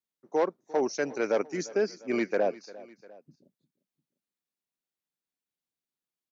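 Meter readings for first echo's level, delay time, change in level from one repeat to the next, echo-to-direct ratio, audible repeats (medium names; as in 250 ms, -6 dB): -19.5 dB, 350 ms, -5.0 dB, -18.5 dB, 2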